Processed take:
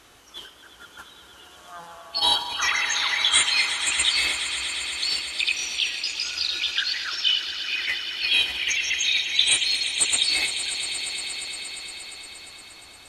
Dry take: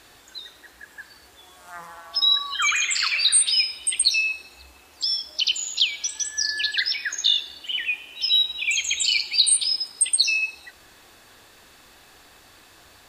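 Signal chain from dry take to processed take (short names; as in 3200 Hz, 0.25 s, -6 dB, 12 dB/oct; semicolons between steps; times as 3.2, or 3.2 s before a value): formant shift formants -3 st; swelling echo 0.117 s, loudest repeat 5, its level -13.5 dB; gain -1.5 dB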